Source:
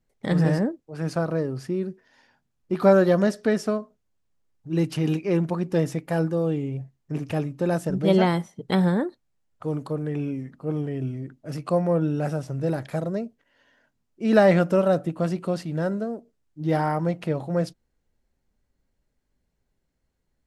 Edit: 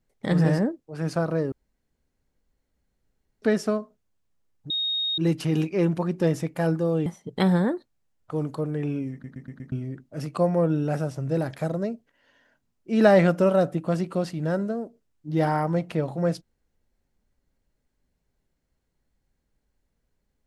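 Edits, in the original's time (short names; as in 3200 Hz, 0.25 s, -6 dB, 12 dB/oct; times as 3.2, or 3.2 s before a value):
1.52–3.42 room tone
4.7 add tone 3730 Hz -23.5 dBFS 0.48 s
6.58–8.38 cut
10.44 stutter in place 0.12 s, 5 plays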